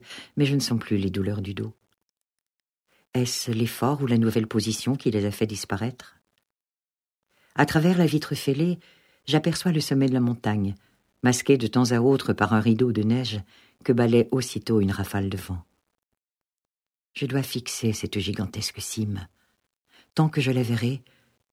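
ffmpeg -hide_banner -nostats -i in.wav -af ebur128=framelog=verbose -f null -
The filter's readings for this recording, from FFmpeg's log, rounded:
Integrated loudness:
  I:         -24.6 LUFS
  Threshold: -35.3 LUFS
Loudness range:
  LRA:         6.9 LU
  Threshold: -45.8 LUFS
  LRA low:   -29.8 LUFS
  LRA high:  -22.9 LUFS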